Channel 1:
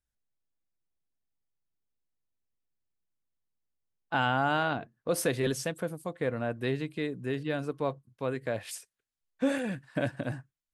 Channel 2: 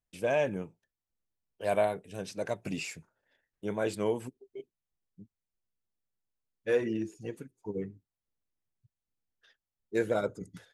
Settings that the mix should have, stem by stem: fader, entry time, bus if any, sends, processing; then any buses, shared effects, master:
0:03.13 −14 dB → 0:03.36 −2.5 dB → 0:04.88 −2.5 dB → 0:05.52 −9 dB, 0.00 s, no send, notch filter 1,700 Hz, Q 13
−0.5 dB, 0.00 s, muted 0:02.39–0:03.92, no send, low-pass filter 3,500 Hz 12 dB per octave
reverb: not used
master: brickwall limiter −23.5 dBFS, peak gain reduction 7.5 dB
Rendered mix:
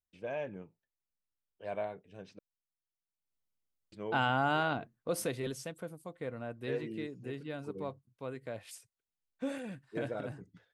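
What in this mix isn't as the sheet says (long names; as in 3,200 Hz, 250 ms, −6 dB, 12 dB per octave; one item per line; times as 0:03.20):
stem 2 −0.5 dB → −10.0 dB
master: missing brickwall limiter −23.5 dBFS, peak gain reduction 7.5 dB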